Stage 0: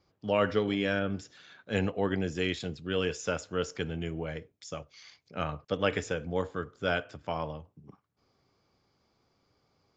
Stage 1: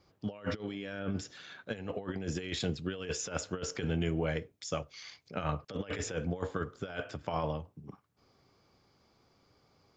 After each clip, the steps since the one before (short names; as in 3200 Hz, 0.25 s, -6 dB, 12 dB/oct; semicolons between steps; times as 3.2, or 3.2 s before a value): negative-ratio compressor -34 dBFS, ratio -0.5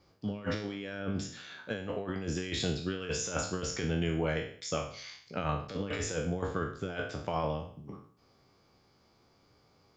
spectral trails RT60 0.52 s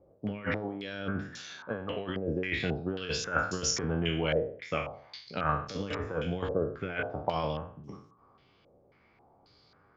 stepped low-pass 3.7 Hz 570–6000 Hz